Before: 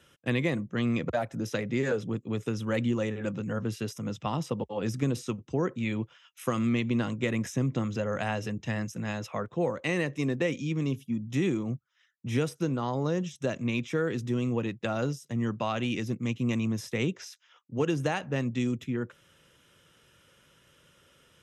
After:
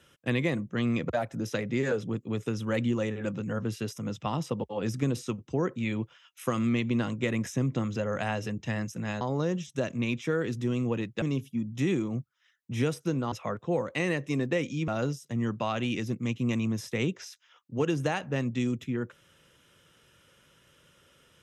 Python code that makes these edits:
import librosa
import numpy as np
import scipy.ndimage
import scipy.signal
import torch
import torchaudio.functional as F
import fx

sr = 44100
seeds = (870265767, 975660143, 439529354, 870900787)

y = fx.edit(x, sr, fx.swap(start_s=9.21, length_s=1.56, other_s=12.87, other_length_s=2.01), tone=tone)